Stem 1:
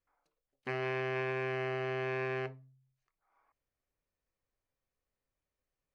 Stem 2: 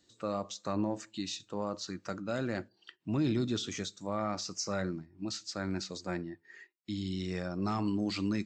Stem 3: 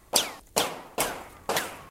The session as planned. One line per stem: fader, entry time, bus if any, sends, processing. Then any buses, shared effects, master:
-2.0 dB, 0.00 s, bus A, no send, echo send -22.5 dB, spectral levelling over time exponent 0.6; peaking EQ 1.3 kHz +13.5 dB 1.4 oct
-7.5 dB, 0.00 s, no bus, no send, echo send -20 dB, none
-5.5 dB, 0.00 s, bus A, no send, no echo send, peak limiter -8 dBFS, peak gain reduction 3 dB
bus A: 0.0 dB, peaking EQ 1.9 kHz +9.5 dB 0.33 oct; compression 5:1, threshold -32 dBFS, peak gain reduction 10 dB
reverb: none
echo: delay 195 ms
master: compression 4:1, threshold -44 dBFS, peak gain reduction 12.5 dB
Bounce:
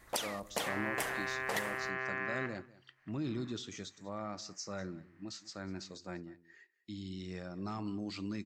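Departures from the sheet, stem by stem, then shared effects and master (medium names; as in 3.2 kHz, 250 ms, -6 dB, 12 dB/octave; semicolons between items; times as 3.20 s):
stem 1 -2.0 dB -> -10.5 dB; master: missing compression 4:1, threshold -44 dBFS, peak gain reduction 12.5 dB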